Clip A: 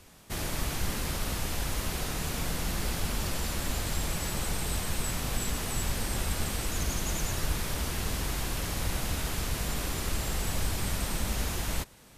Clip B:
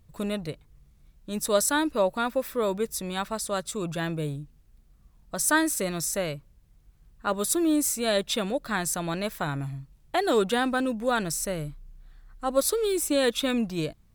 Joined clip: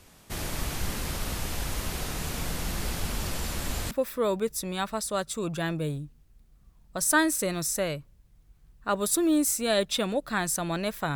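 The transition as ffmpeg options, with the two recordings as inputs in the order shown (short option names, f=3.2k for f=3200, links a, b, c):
-filter_complex "[0:a]apad=whole_dur=11.15,atrim=end=11.15,atrim=end=3.912[a];[1:a]atrim=start=2.288:end=9.53[b];[a][b]acrossfade=d=0.004:c1=hsin:c2=hsin"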